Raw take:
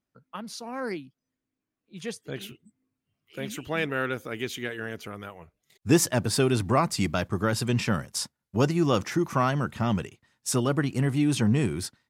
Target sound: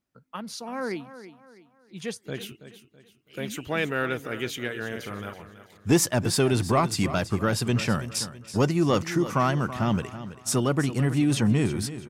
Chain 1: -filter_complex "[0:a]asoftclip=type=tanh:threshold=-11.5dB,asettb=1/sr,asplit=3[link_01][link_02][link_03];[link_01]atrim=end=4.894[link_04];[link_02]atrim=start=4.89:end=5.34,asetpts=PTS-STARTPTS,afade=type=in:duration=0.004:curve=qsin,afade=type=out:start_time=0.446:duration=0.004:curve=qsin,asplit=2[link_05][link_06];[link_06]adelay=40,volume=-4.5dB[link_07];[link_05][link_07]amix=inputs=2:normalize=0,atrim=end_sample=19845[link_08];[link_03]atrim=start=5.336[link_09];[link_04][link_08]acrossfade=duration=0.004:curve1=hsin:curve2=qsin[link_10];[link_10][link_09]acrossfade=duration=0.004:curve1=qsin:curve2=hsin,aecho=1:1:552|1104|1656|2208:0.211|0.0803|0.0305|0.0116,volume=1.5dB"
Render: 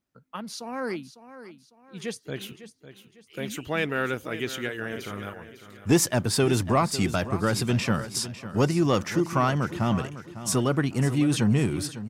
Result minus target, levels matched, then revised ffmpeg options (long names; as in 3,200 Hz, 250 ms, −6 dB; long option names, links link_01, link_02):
echo 224 ms late
-filter_complex "[0:a]asoftclip=type=tanh:threshold=-11.5dB,asettb=1/sr,asplit=3[link_01][link_02][link_03];[link_01]atrim=end=4.894[link_04];[link_02]atrim=start=4.89:end=5.34,asetpts=PTS-STARTPTS,afade=type=in:duration=0.004:curve=qsin,afade=type=out:start_time=0.446:duration=0.004:curve=qsin,asplit=2[link_05][link_06];[link_06]adelay=40,volume=-4.5dB[link_07];[link_05][link_07]amix=inputs=2:normalize=0,atrim=end_sample=19845[link_08];[link_03]atrim=start=5.336[link_09];[link_04][link_08]acrossfade=duration=0.004:curve1=hsin:curve2=qsin[link_10];[link_10][link_09]acrossfade=duration=0.004:curve1=qsin:curve2=hsin,aecho=1:1:328|656|984|1312:0.211|0.0803|0.0305|0.0116,volume=1.5dB"